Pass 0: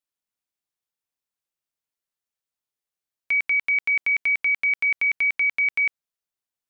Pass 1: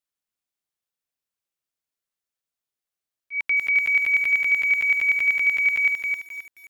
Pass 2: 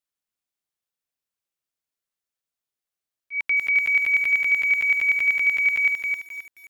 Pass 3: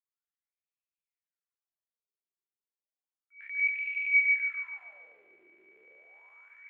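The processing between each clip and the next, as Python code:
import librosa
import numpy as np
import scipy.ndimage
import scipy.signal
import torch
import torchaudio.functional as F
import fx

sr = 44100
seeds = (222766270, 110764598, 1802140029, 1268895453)

y1 = fx.peak_eq(x, sr, hz=920.0, db=-3.5, octaves=0.2)
y1 = fx.auto_swell(y1, sr, attack_ms=137.0)
y1 = fx.echo_crushed(y1, sr, ms=264, feedback_pct=35, bits=8, wet_db=-4.0)
y2 = y1
y3 = fx.spec_trails(y2, sr, decay_s=2.52)
y3 = fx.wah_lfo(y3, sr, hz=0.32, low_hz=360.0, high_hz=2600.0, q=17.0)
y3 = fx.echo_feedback(y3, sr, ms=143, feedback_pct=50, wet_db=-3.5)
y3 = y3 * 10.0 ** (-4.0 / 20.0)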